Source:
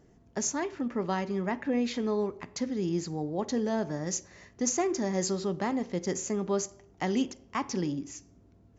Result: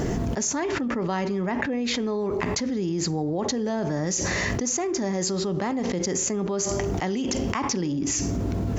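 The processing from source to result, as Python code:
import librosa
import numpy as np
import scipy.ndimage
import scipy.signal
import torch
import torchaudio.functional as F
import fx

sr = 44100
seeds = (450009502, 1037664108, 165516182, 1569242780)

y = fx.env_flatten(x, sr, amount_pct=100)
y = y * 10.0 ** (-1.5 / 20.0)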